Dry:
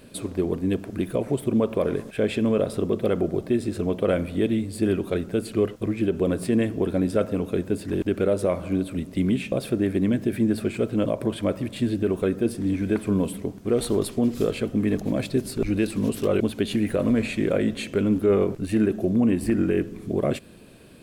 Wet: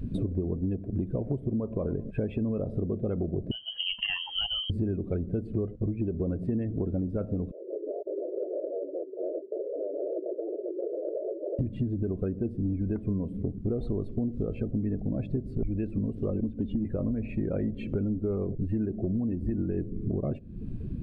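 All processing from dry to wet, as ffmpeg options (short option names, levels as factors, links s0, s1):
-filter_complex "[0:a]asettb=1/sr,asplit=3[s0][s1][s2];[s0]atrim=end=3.514[s3];[s1]atrim=start=3.51:end=4.7,asetpts=PTS-STARTPTS,afade=t=in:d=0.004:c=qsin,afade=t=out:st=1.186:d=0.004:c=qsin,equalizer=f=170:w=0.55:g=-5.5,asoftclip=type=hard:threshold=0.119,lowpass=f=2800:t=q:w=0.5098,lowpass=f=2800:t=q:w=0.6013,lowpass=f=2800:t=q:w=0.9,lowpass=f=2800:t=q:w=2.563,afreqshift=-3300[s4];[s2]atrim=start=4.696[s5];[s3][s4]acrossfade=d=0.004:c1=hsin:c2=qsin[s6];[s6][s5]acrossfade=d=0.004:c1=qsin:c2=hsin,asettb=1/sr,asplit=3[s7][s8][s9];[s7]atrim=end=7.514[s10];[s8]atrim=start=7.51:end=11.59,asetpts=PTS-STARTPTS,afade=t=in:d=0.004:c=qsin,afade=t=out:st=4.076:d=0.004:c=qsin,aeval=exprs='0.0355*(abs(mod(val(0)/0.0355+3,4)-2)-1)':c=same,asuperpass=centerf=470:order=8:qfactor=1.6[s11];[s9]atrim=start=11.586[s12];[s10][s11]acrossfade=d=0.004:c1=hsin:c2=qsin[s13];[s13][s12]acrossfade=d=0.004:c1=qsin:c2=hsin,asettb=1/sr,asplit=3[s14][s15][s16];[s14]atrim=end=16.304[s17];[s15]atrim=start=16.3:end=16.85,asetpts=PTS-STARTPTS,afade=t=in:d=0.004:c=qsin,afade=t=out:st=0.546:d=0.004:c=qsin,aemphasis=mode=reproduction:type=50fm,acrossover=split=410|3000[s18][s19][s20];[s19]acompressor=threshold=0.00631:ratio=2:attack=3.2:release=140:knee=2.83:detection=peak[s21];[s18][s21][s20]amix=inputs=3:normalize=0,aecho=1:1:3.9:0.45,atrim=end_sample=24255[s22];[s16]atrim=start=16.846[s23];[s17][s22]acrossfade=d=0.004:c1=hsin:c2=qsin[s24];[s24][s23]acrossfade=d=0.004:c1=qsin:c2=hsin,aemphasis=mode=reproduction:type=riaa,afftdn=nr=18:nf=-34,acompressor=threshold=0.0178:ratio=10,volume=2.37"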